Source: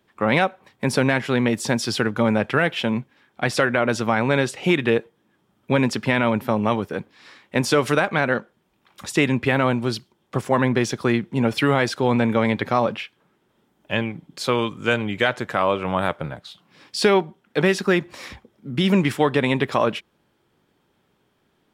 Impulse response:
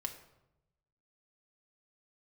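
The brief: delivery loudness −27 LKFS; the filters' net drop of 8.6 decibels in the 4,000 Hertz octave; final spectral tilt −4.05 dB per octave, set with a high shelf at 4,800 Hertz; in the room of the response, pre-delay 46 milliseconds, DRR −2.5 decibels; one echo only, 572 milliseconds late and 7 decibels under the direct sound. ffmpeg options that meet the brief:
-filter_complex "[0:a]equalizer=frequency=4000:width_type=o:gain=-7.5,highshelf=frequency=4800:gain=-9,aecho=1:1:572:0.447,asplit=2[link_01][link_02];[1:a]atrim=start_sample=2205,adelay=46[link_03];[link_02][link_03]afir=irnorm=-1:irlink=0,volume=3.5dB[link_04];[link_01][link_04]amix=inputs=2:normalize=0,volume=-9dB"

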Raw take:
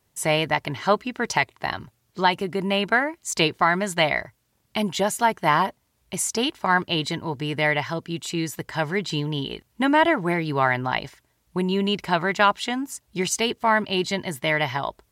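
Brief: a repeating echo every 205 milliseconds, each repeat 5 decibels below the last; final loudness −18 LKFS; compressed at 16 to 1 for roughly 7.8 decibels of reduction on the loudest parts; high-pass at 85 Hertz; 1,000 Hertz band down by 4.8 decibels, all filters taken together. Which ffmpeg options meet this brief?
ffmpeg -i in.wav -af "highpass=85,equalizer=frequency=1000:width_type=o:gain=-6,acompressor=threshold=-24dB:ratio=16,aecho=1:1:205|410|615|820|1025|1230|1435:0.562|0.315|0.176|0.0988|0.0553|0.031|0.0173,volume=10.5dB" out.wav

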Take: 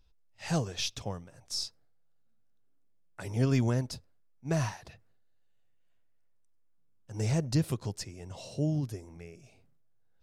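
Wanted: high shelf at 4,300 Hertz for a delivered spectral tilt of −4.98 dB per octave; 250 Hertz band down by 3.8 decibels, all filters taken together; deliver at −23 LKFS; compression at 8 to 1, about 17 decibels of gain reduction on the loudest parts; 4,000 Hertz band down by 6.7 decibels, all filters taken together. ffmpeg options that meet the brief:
ffmpeg -i in.wav -af "equalizer=frequency=250:width_type=o:gain=-6,equalizer=frequency=4000:width_type=o:gain=-6.5,highshelf=frequency=4300:gain=-4,acompressor=threshold=-43dB:ratio=8,volume=25.5dB" out.wav

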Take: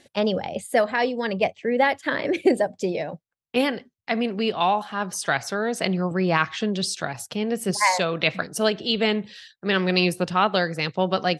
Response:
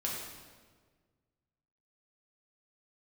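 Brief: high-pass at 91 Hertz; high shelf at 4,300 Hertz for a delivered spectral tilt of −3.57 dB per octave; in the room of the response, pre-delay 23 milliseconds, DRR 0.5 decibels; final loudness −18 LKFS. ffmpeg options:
-filter_complex "[0:a]highpass=91,highshelf=frequency=4300:gain=-3.5,asplit=2[link_01][link_02];[1:a]atrim=start_sample=2205,adelay=23[link_03];[link_02][link_03]afir=irnorm=-1:irlink=0,volume=-4.5dB[link_04];[link_01][link_04]amix=inputs=2:normalize=0,volume=3.5dB"

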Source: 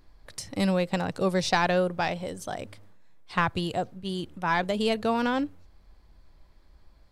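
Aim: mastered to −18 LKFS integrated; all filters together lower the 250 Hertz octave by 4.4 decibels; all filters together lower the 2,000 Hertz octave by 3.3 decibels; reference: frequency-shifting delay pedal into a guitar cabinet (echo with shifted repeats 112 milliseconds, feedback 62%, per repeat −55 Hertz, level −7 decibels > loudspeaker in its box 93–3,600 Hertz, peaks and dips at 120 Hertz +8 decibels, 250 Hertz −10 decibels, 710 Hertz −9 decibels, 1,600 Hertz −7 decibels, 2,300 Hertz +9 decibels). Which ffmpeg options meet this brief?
ffmpeg -i in.wav -filter_complex "[0:a]equalizer=frequency=250:width_type=o:gain=-3,equalizer=frequency=2000:width_type=o:gain=-4,asplit=9[link_01][link_02][link_03][link_04][link_05][link_06][link_07][link_08][link_09];[link_02]adelay=112,afreqshift=-55,volume=-7dB[link_10];[link_03]adelay=224,afreqshift=-110,volume=-11.2dB[link_11];[link_04]adelay=336,afreqshift=-165,volume=-15.3dB[link_12];[link_05]adelay=448,afreqshift=-220,volume=-19.5dB[link_13];[link_06]adelay=560,afreqshift=-275,volume=-23.6dB[link_14];[link_07]adelay=672,afreqshift=-330,volume=-27.8dB[link_15];[link_08]adelay=784,afreqshift=-385,volume=-31.9dB[link_16];[link_09]adelay=896,afreqshift=-440,volume=-36.1dB[link_17];[link_01][link_10][link_11][link_12][link_13][link_14][link_15][link_16][link_17]amix=inputs=9:normalize=0,highpass=93,equalizer=frequency=120:width_type=q:width=4:gain=8,equalizer=frequency=250:width_type=q:width=4:gain=-10,equalizer=frequency=710:width_type=q:width=4:gain=-9,equalizer=frequency=1600:width_type=q:width=4:gain=-7,equalizer=frequency=2300:width_type=q:width=4:gain=9,lowpass=frequency=3600:width=0.5412,lowpass=frequency=3600:width=1.3066,volume=11.5dB" out.wav

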